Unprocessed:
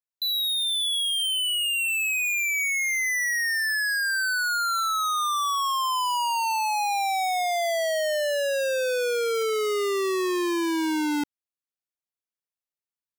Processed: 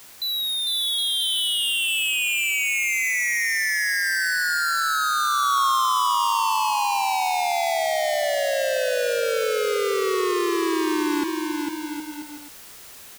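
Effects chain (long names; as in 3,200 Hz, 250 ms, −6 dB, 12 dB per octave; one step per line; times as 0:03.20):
dynamic equaliser 1,100 Hz, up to +5 dB, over −40 dBFS, Q 7.6
in parallel at −6 dB: bit-depth reduction 6 bits, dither triangular
on the sum: bouncing-ball delay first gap 450 ms, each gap 0.7×, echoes 5
level −3.5 dB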